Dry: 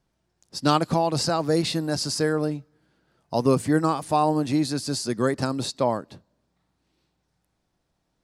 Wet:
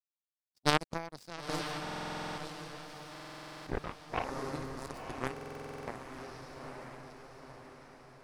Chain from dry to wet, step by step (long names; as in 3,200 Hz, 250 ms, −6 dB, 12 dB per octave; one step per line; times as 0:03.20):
feedback delay that plays each chunk backwards 695 ms, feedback 59%, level −6 dB
0:03.62–0:04.37: linear-prediction vocoder at 8 kHz whisper
power curve on the samples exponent 3
on a send: feedback delay with all-pass diffusion 963 ms, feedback 53%, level −7 dB
on the sum: buffer that repeats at 0:01.82/0:03.11/0:05.32, samples 2,048, times 11